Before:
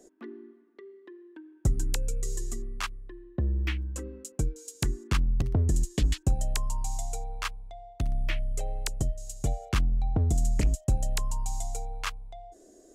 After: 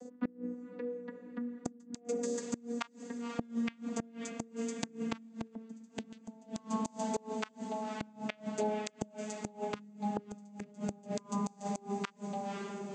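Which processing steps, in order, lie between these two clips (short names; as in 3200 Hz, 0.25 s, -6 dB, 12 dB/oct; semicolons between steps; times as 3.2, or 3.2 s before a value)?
vocoder on a gliding note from B3, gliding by -4 st; diffused feedback echo 0.532 s, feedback 66%, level -12 dB; flipped gate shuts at -31 dBFS, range -26 dB; gain +8.5 dB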